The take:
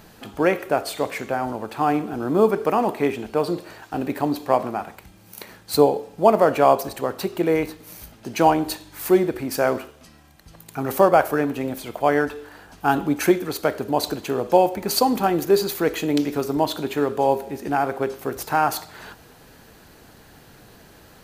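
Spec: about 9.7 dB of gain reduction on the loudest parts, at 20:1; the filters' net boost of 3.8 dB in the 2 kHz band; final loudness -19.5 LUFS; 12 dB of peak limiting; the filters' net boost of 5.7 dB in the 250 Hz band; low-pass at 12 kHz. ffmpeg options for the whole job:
-af "lowpass=12000,equalizer=f=250:t=o:g=7.5,equalizer=f=2000:t=o:g=5,acompressor=threshold=0.158:ratio=20,volume=2.37,alimiter=limit=0.355:level=0:latency=1"

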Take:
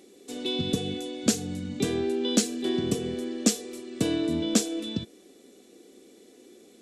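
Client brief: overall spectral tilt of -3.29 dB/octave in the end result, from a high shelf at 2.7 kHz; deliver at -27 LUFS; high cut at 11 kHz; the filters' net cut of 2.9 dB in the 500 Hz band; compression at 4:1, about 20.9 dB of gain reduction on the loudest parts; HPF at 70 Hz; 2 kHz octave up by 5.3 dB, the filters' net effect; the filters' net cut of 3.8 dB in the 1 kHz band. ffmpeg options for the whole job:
-af "highpass=70,lowpass=11000,equalizer=f=500:t=o:g=-3.5,equalizer=f=1000:t=o:g=-6,equalizer=f=2000:t=o:g=6.5,highshelf=f=2700:g=4,acompressor=threshold=0.00708:ratio=4,volume=7.08"

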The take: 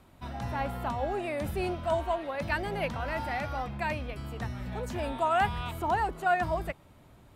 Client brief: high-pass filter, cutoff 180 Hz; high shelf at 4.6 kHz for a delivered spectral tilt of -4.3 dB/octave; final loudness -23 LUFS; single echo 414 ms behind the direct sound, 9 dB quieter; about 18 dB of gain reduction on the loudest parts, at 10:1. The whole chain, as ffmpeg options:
-af "highpass=180,highshelf=f=4600:g=-7.5,acompressor=threshold=0.00891:ratio=10,aecho=1:1:414:0.355,volume=11.9"

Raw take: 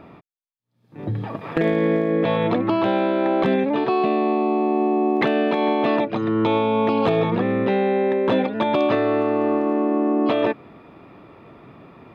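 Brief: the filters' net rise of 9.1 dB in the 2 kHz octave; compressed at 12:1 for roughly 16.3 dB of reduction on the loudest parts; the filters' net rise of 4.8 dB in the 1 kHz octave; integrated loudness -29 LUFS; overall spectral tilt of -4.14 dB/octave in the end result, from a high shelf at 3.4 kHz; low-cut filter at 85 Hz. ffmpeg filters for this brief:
-af "highpass=85,equalizer=f=1000:t=o:g=4,equalizer=f=2000:t=o:g=8,highshelf=f=3400:g=6.5,acompressor=threshold=0.0447:ratio=12,volume=1.19"

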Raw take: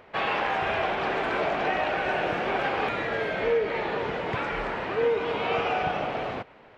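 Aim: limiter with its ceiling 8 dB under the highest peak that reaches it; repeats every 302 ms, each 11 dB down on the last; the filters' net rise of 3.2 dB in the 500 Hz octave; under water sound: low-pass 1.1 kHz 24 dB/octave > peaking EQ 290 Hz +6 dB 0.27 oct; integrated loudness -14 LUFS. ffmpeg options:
-af "equalizer=f=500:t=o:g=3.5,alimiter=limit=0.106:level=0:latency=1,lowpass=f=1100:w=0.5412,lowpass=f=1100:w=1.3066,equalizer=f=290:t=o:w=0.27:g=6,aecho=1:1:302|604|906:0.282|0.0789|0.0221,volume=5.62"

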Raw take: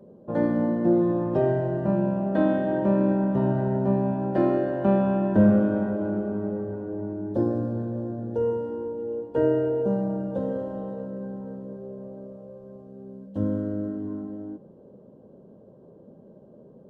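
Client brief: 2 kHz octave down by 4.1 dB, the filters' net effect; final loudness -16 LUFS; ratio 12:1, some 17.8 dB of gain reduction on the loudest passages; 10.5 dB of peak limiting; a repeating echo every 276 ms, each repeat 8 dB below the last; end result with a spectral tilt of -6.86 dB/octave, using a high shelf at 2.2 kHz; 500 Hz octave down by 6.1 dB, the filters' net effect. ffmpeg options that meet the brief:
-af "equalizer=f=500:t=o:g=-8,equalizer=f=2000:t=o:g=-7,highshelf=f=2200:g=3.5,acompressor=threshold=0.0224:ratio=12,alimiter=level_in=2.99:limit=0.0631:level=0:latency=1,volume=0.335,aecho=1:1:276|552|828|1104|1380:0.398|0.159|0.0637|0.0255|0.0102,volume=15.8"

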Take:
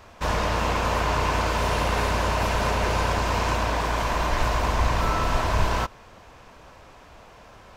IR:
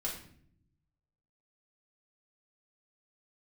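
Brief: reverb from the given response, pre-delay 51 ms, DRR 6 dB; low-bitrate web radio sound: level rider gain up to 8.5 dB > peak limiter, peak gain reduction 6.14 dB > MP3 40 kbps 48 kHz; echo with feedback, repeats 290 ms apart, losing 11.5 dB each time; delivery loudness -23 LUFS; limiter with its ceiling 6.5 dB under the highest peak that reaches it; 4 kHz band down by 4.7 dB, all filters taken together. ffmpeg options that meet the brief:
-filter_complex "[0:a]equalizer=f=4000:t=o:g=-6.5,alimiter=limit=0.15:level=0:latency=1,aecho=1:1:290|580|870:0.266|0.0718|0.0194,asplit=2[s0][s1];[1:a]atrim=start_sample=2205,adelay=51[s2];[s1][s2]afir=irnorm=-1:irlink=0,volume=0.376[s3];[s0][s3]amix=inputs=2:normalize=0,dynaudnorm=m=2.66,alimiter=limit=0.126:level=0:latency=1,volume=1.88" -ar 48000 -c:a libmp3lame -b:a 40k

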